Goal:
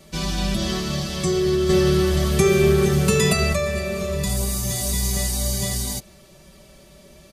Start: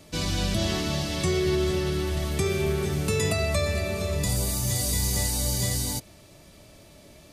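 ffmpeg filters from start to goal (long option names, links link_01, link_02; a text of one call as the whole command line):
ffmpeg -i in.wav -filter_complex "[0:a]equalizer=frequency=67:width_type=o:width=1.1:gain=5,asettb=1/sr,asplit=3[link_01][link_02][link_03];[link_01]atrim=end=1.694[link_04];[link_02]atrim=start=1.69:end=3.53,asetpts=PTS-STARTPTS,afade=type=in:duration=0.004:curve=qsin,afade=type=out:start_time=1.836:duration=0.004:curve=qsin,acontrast=45[link_05];[link_03]atrim=start=3.526[link_06];[link_04][link_05]acrossfade=duration=0.004:curve1=hsin:curve2=qsin[link_07];[link_07][link_06]acrossfade=duration=0.004:curve1=qsin:curve2=hsin,aecho=1:1:5.2:0.78" out.wav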